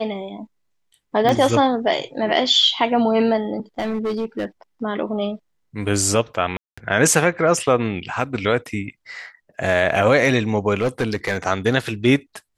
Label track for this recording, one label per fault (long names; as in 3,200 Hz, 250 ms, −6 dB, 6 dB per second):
1.290000	1.290000	click −8 dBFS
3.780000	4.450000	clipping −19.5 dBFS
6.570000	6.780000	drop-out 205 ms
10.810000	11.370000	clipping −15 dBFS